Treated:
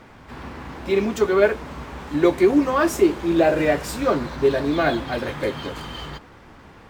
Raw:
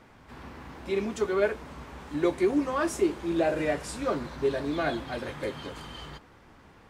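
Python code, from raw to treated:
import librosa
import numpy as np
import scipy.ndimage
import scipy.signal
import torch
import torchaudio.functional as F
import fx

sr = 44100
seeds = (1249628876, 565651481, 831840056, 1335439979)

y = np.interp(np.arange(len(x)), np.arange(len(x))[::2], x[::2])
y = y * librosa.db_to_amplitude(8.5)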